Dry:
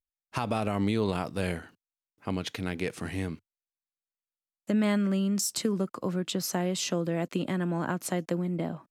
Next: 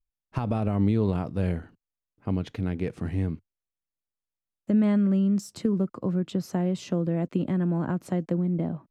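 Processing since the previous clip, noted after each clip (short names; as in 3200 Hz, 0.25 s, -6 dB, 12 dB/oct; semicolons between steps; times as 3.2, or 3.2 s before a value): tilt -3.5 dB/oct; gain -3.5 dB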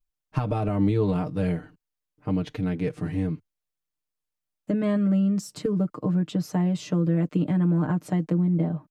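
comb 6.6 ms, depth 82%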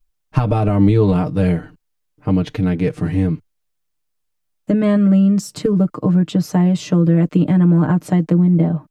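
low shelf 71 Hz +6.5 dB; gain +8.5 dB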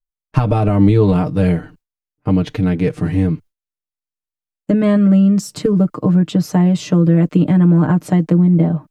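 gate with hold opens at -36 dBFS; gain +1.5 dB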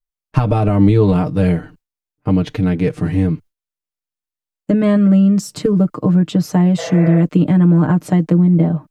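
spectral repair 6.81–7.16, 420–2700 Hz after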